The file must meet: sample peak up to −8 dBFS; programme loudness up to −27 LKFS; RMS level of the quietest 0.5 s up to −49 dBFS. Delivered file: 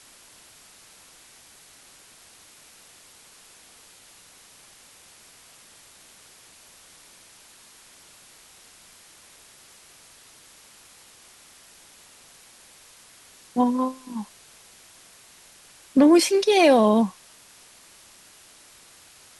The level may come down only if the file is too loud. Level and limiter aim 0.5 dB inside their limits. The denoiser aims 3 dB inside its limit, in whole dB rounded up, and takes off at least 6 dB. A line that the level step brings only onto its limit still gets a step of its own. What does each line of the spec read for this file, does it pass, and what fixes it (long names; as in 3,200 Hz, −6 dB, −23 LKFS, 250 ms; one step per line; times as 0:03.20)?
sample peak −6.0 dBFS: out of spec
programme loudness −20.0 LKFS: out of spec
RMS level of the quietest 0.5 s −52 dBFS: in spec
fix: level −7.5 dB